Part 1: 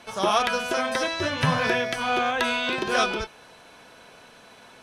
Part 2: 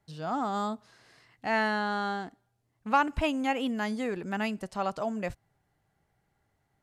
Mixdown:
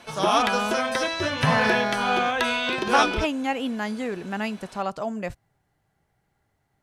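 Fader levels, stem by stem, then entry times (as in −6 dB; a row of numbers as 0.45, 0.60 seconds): +0.5, +2.5 decibels; 0.00, 0.00 seconds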